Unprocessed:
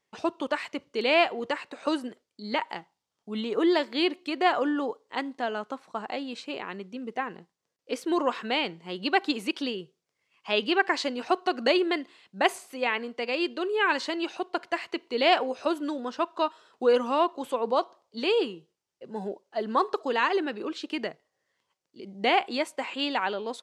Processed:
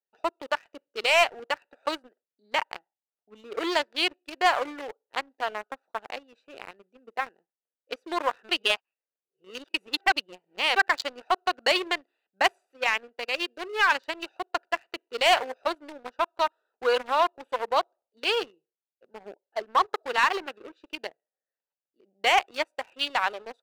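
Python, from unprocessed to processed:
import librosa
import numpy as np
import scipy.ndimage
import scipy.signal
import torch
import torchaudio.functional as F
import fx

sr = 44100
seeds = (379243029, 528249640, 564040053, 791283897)

y = fx.edit(x, sr, fx.reverse_span(start_s=8.49, length_s=2.27), tone=tone)
y = fx.wiener(y, sr, points=41)
y = scipy.signal.sosfilt(scipy.signal.butter(2, 820.0, 'highpass', fs=sr, output='sos'), y)
y = fx.leveller(y, sr, passes=2)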